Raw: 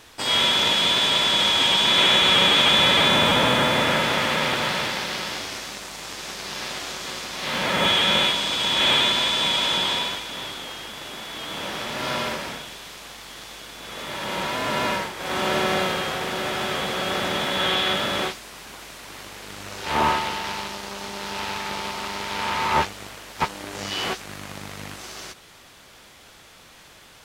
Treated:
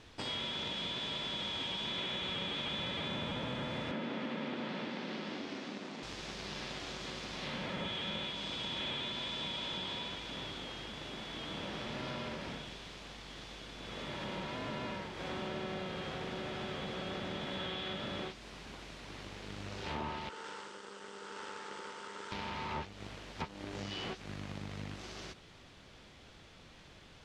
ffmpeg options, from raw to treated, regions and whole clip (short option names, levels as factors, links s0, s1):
-filter_complex "[0:a]asettb=1/sr,asplit=3[s0][s1][s2];[s0]atrim=end=3.914[s3];[s1]atrim=start=3.91:end=6.03,asetpts=PTS-STARTPTS,afade=t=in:d=0.004:c=qsin,afade=t=out:st=2.116:d=0.004:c=qsin,highpass=f=240:t=q:w=2.4,aemphasis=mode=reproduction:type=50fm[s4];[s2]atrim=start=6.026[s5];[s3][s4]acrossfade=d=0.004:c1=hsin:c2=qsin[s6];[s6][s5]acrossfade=d=0.004:c1=qsin:c2=hsin,asettb=1/sr,asplit=3[s7][s8][s9];[s7]atrim=end=20.294[s10];[s8]atrim=start=20.29:end=22.32,asetpts=PTS-STARTPTS,afade=t=in:d=0.004:c=qsin,afade=t=out:st=2.026:d=0.004:c=qsin,aeval=exprs='max(val(0),0)':c=same,highpass=400,equalizer=f=460:t=q:w=4:g=9,equalizer=f=660:t=q:w=4:g=-9,equalizer=f=1400:t=q:w=4:g=8,equalizer=f=2400:t=q:w=4:g=-7,equalizer=f=4000:t=q:w=4:g=-5,equalizer=f=8200:t=q:w=4:g=9,lowpass=f=8900:w=0.5412,lowpass=f=8900:w=1.3066[s11];[s9]atrim=start=22.316[s12];[s10][s11]acrossfade=d=0.004:c1=hsin:c2=qsin[s13];[s13][s12]acrossfade=d=0.004:c1=qsin:c2=hsin,lowpass=3500,equalizer=f=1300:w=0.34:g=-10.5,acompressor=threshold=0.0126:ratio=4"